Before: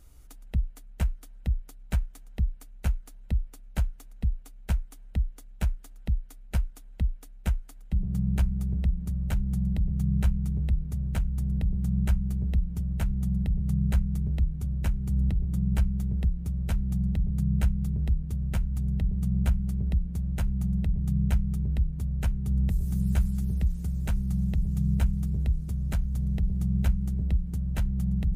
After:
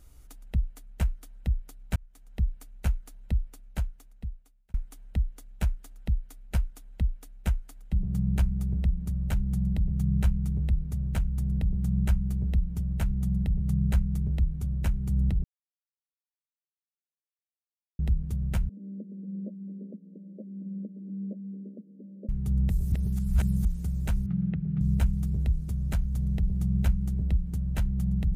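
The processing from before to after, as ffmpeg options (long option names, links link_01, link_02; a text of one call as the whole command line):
ffmpeg -i in.wav -filter_complex "[0:a]asettb=1/sr,asplit=3[link_01][link_02][link_03];[link_01]atrim=end=18.694[link_04];[link_02]atrim=start=18.69:end=22.29,asetpts=PTS-STARTPTS,afade=type=in:duration=0.004:curve=qsin,afade=type=out:start_time=3.596:duration=0.004:curve=qsin,asuperpass=centerf=340:order=20:qfactor=0.85[link_05];[link_03]atrim=start=22.286[link_06];[link_04][link_05]acrossfade=duration=0.004:curve1=hsin:curve2=qsin[link_07];[link_07][link_06]acrossfade=duration=0.004:curve1=qsin:curve2=hsin,asettb=1/sr,asplit=3[link_08][link_09][link_10];[link_08]atrim=end=24.264[link_11];[link_09]atrim=start=24.26:end=24.81,asetpts=PTS-STARTPTS,afade=type=in:duration=0.004:curve=qsin,afade=type=out:start_time=0.546:duration=0.004:curve=qsin,highpass=140,equalizer=frequency=160:width_type=q:width=4:gain=9,equalizer=frequency=600:width_type=q:width=4:gain=-5,equalizer=frequency=920:width_type=q:width=4:gain=-7,equalizer=frequency=1400:width_type=q:width=4:gain=4,lowpass=frequency=2700:width=0.5412,lowpass=frequency=2700:width=1.3066[link_12];[link_10]atrim=start=24.806[link_13];[link_11][link_12]acrossfade=duration=0.004:curve1=hsin:curve2=qsin[link_14];[link_14][link_13]acrossfade=duration=0.004:curve1=qsin:curve2=hsin,asplit=7[link_15][link_16][link_17][link_18][link_19][link_20][link_21];[link_15]atrim=end=1.96,asetpts=PTS-STARTPTS,afade=type=out:start_time=1.956:duration=0.004:curve=hsin[link_22];[link_16]atrim=start=1.96:end=4.74,asetpts=PTS-STARTPTS,afade=type=in:duration=0.47,afade=type=out:start_time=1.43:duration=1.35[link_23];[link_17]atrim=start=4.74:end=15.44,asetpts=PTS-STARTPTS,afade=type=in:duration=0.004:curve=hsin,afade=type=out:start_time=10.696:duration=0.004:curve=hsin[link_24];[link_18]atrim=start=15.44:end=17.99,asetpts=PTS-STARTPTS,volume=0[link_25];[link_19]atrim=start=17.99:end=22.922,asetpts=PTS-STARTPTS,afade=type=in:duration=0.004:curve=hsin[link_26];[link_20]atrim=start=22.918:end=23.652,asetpts=PTS-STARTPTS,areverse[link_27];[link_21]atrim=start=23.648[link_28];[link_22][link_23][link_24][link_25][link_26]concat=n=5:v=0:a=1[link_29];[link_29][link_27]acrossfade=duration=0.004:curve1=hsin:curve2=hsin[link_30];[link_30][link_28]acrossfade=duration=0.004:curve1=hsin:curve2=hsin" out.wav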